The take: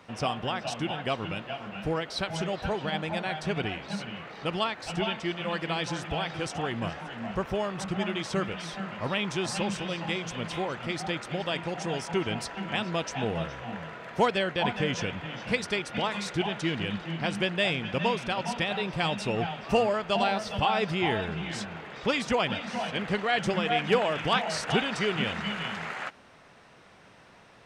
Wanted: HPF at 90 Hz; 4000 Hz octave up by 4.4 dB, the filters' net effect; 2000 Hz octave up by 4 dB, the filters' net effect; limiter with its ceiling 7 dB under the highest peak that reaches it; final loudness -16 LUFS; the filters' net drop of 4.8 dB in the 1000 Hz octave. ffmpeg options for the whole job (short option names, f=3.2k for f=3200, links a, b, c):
-af "highpass=90,equalizer=f=1k:t=o:g=-8.5,equalizer=f=2k:t=o:g=6,equalizer=f=4k:t=o:g=4,volume=13.5dB,alimiter=limit=-2dB:level=0:latency=1"